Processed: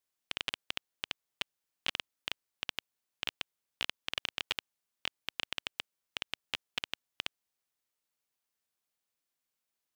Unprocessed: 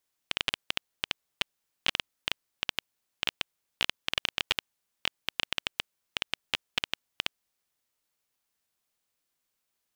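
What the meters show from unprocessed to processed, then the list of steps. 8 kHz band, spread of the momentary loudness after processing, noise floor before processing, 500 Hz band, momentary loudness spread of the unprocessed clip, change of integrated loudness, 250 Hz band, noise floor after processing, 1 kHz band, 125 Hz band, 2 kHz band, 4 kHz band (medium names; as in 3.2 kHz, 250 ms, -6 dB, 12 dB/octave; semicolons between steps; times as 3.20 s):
-6.0 dB, 5 LU, -82 dBFS, -6.0 dB, 5 LU, -6.0 dB, -6.5 dB, under -85 dBFS, -6.0 dB, -7.5 dB, -6.0 dB, -6.0 dB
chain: bass shelf 88 Hz -4.5 dB; trim -6 dB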